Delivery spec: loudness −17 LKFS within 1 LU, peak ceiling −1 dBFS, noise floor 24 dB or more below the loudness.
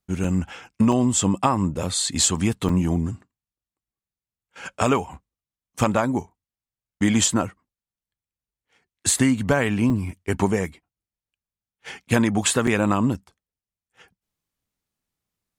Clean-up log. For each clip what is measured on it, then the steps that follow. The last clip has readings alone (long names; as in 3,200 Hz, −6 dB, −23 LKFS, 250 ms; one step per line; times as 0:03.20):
number of dropouts 6; longest dropout 3.6 ms; integrated loudness −22.0 LKFS; sample peak −4.5 dBFS; target loudness −17.0 LKFS
→ repair the gap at 0:00.24/0:00.92/0:02.69/0:09.19/0:09.90/0:12.67, 3.6 ms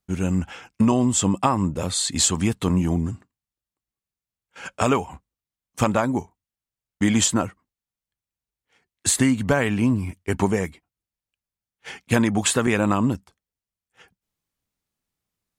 number of dropouts 0; integrated loudness −22.0 LKFS; sample peak −4.5 dBFS; target loudness −17.0 LKFS
→ level +5 dB
brickwall limiter −1 dBFS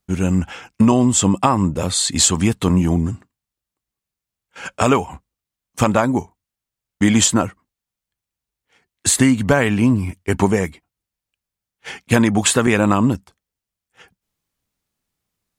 integrated loudness −17.0 LKFS; sample peak −1.0 dBFS; background noise floor −86 dBFS